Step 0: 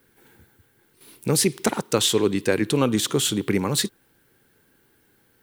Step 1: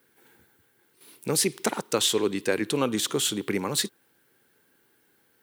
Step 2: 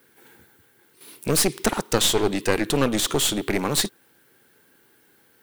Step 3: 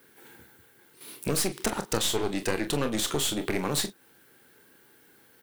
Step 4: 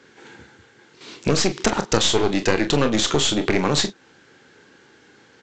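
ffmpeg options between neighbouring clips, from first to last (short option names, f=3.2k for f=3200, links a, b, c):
-af "highpass=f=280:p=1,volume=-2.5dB"
-af "aeval=exprs='clip(val(0),-1,0.0266)':c=same,volume=6.5dB"
-af "acompressor=threshold=-29dB:ratio=2,aecho=1:1:27|42:0.282|0.237"
-af "aresample=16000,aresample=44100,volume=9dB"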